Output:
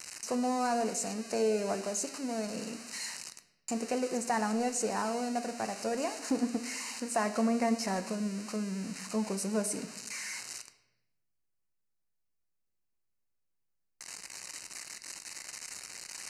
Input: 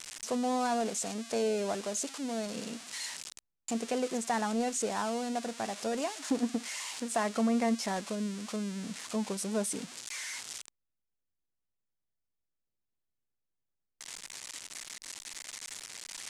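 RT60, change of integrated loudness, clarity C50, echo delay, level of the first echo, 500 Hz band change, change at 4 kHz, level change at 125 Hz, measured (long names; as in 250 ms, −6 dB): 0.95 s, +0.5 dB, 13.0 dB, no echo audible, no echo audible, +0.5 dB, −1.5 dB, +1.0 dB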